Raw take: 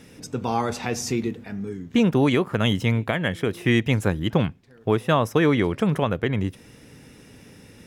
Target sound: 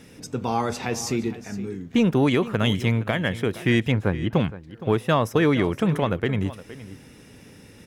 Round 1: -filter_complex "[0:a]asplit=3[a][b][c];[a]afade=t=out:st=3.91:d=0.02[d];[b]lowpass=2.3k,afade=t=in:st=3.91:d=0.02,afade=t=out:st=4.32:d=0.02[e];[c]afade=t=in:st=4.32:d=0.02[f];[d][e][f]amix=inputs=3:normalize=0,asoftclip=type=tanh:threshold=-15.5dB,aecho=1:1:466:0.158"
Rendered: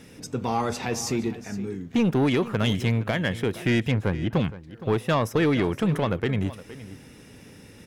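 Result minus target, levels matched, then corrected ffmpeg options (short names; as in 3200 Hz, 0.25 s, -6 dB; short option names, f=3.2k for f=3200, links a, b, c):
soft clip: distortion +14 dB
-filter_complex "[0:a]asplit=3[a][b][c];[a]afade=t=out:st=3.91:d=0.02[d];[b]lowpass=2.3k,afade=t=in:st=3.91:d=0.02,afade=t=out:st=4.32:d=0.02[e];[c]afade=t=in:st=4.32:d=0.02[f];[d][e][f]amix=inputs=3:normalize=0,asoftclip=type=tanh:threshold=-6.5dB,aecho=1:1:466:0.158"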